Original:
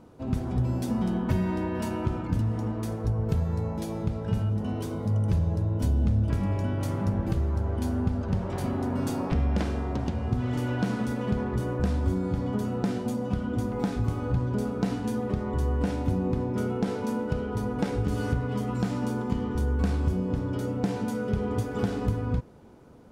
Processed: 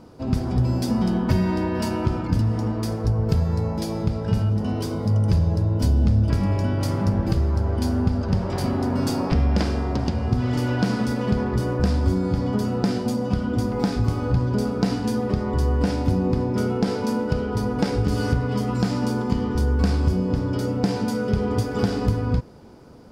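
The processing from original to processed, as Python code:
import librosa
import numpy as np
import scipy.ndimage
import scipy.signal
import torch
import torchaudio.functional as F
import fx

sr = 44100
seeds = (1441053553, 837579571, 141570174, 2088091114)

y = fx.peak_eq(x, sr, hz=4900.0, db=11.5, octaves=0.3)
y = y * librosa.db_to_amplitude(5.5)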